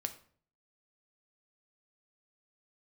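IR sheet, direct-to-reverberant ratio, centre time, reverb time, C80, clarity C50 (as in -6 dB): 7.0 dB, 7 ms, 0.50 s, 17.0 dB, 13.0 dB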